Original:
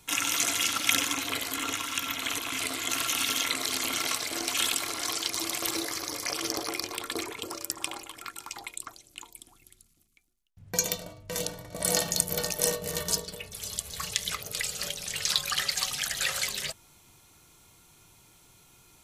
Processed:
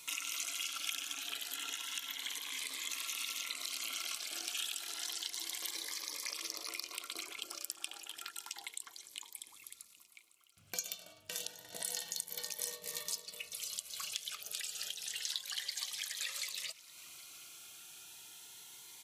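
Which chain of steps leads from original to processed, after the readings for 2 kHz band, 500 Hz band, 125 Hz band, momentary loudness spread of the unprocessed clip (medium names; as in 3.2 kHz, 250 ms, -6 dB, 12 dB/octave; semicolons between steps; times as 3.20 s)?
-12.0 dB, -19.5 dB, -26.5 dB, 13 LU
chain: high-pass 1.3 kHz 6 dB/octave; peaking EQ 3.1 kHz +4 dB 0.96 oct; compression 3:1, threshold -48 dBFS, peak gain reduction 22.5 dB; on a send: feedback delay 770 ms, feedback 55%, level -20 dB; on the sum: Shepard-style phaser rising 0.3 Hz; trim +5.5 dB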